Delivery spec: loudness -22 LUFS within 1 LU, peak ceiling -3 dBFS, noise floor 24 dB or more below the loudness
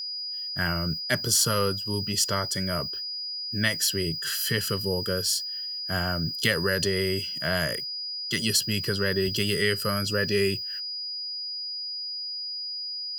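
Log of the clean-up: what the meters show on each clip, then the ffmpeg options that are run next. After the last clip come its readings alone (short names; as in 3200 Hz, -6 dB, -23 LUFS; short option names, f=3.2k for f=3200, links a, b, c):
steady tone 4900 Hz; tone level -31 dBFS; loudness -26.5 LUFS; peak -9.0 dBFS; loudness target -22.0 LUFS
-> -af "bandreject=f=4.9k:w=30"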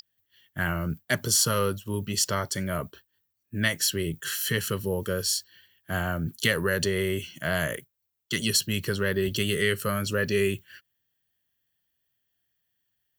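steady tone none; loudness -27.0 LUFS; peak -9.5 dBFS; loudness target -22.0 LUFS
-> -af "volume=5dB"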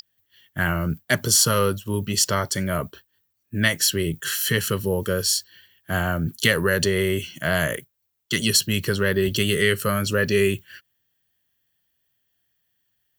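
loudness -22.0 LUFS; peak -4.5 dBFS; noise floor -73 dBFS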